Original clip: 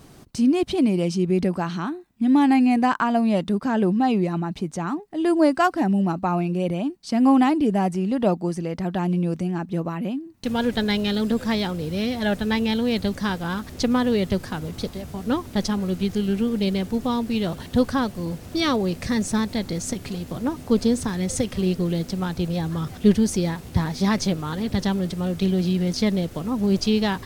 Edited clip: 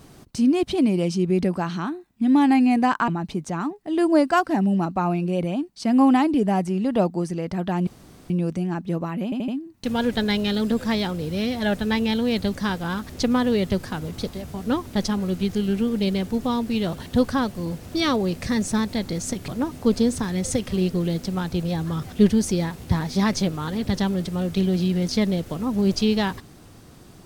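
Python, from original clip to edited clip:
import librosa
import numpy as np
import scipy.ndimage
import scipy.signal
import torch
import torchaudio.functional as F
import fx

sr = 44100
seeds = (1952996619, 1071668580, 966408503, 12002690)

y = fx.edit(x, sr, fx.cut(start_s=3.08, length_s=1.27),
    fx.insert_room_tone(at_s=9.14, length_s=0.43),
    fx.stutter(start_s=10.08, slice_s=0.08, count=4),
    fx.cut(start_s=20.08, length_s=0.25), tone=tone)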